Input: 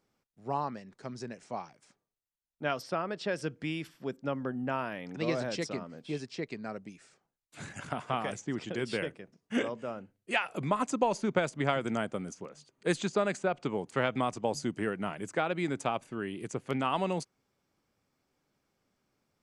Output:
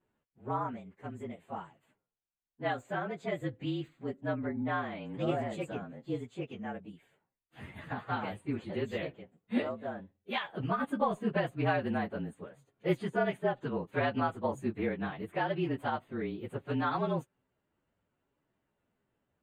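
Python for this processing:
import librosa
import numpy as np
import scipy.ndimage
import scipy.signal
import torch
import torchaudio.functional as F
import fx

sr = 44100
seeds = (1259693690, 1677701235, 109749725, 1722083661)

y = fx.partial_stretch(x, sr, pct=111)
y = np.convolve(y, np.full(8, 1.0 / 8))[:len(y)]
y = y * librosa.db_to_amplitude(2.0)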